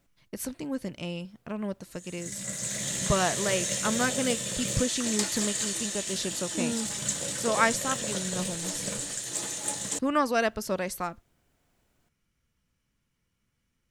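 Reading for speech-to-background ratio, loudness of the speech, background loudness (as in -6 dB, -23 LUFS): -1.0 dB, -31.0 LUFS, -30.0 LUFS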